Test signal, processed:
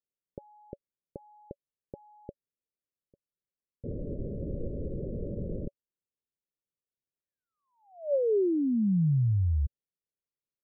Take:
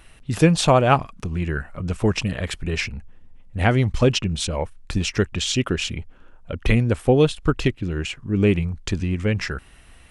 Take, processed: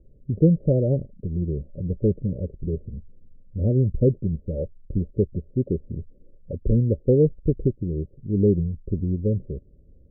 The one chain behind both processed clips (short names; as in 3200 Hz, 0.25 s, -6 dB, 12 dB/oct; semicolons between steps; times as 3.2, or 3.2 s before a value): rippled Chebyshev low-pass 580 Hz, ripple 3 dB